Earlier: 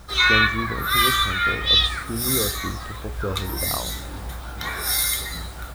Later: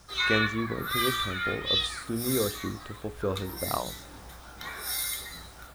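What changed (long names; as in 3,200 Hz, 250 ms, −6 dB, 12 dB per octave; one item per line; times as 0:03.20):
background −9.5 dB
master: add low-shelf EQ 120 Hz −9 dB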